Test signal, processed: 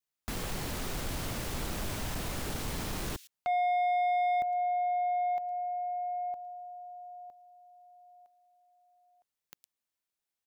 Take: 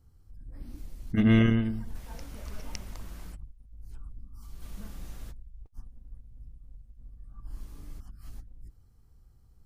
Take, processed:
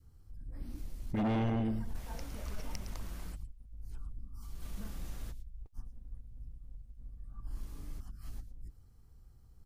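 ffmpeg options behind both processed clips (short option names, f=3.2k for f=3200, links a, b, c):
-filter_complex "[0:a]acrossover=split=400[a][b];[b]acompressor=threshold=-40dB:ratio=2[c];[a][c]amix=inputs=2:normalize=0,acrossover=split=2500[d][e];[d]asoftclip=type=hard:threshold=-28dB[f];[e]aecho=1:1:111:0.251[g];[f][g]amix=inputs=2:normalize=0,adynamicequalizer=threshold=0.00631:dfrequency=750:dqfactor=1.8:tfrequency=750:tqfactor=1.8:attack=5:release=100:ratio=0.375:range=3:mode=boostabove:tftype=bell,asoftclip=type=tanh:threshold=-25.5dB"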